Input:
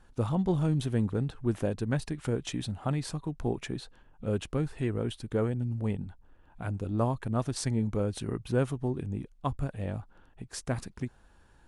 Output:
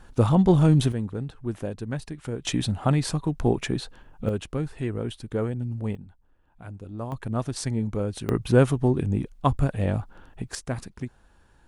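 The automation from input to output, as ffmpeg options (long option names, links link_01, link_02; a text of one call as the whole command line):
ffmpeg -i in.wav -af "asetnsamples=nb_out_samples=441:pad=0,asendcmd='0.92 volume volume -1.5dB;2.45 volume volume 8.5dB;4.29 volume volume 1.5dB;5.95 volume volume -6dB;7.12 volume volume 2dB;8.29 volume volume 9.5dB;10.55 volume volume 1.5dB',volume=9.5dB" out.wav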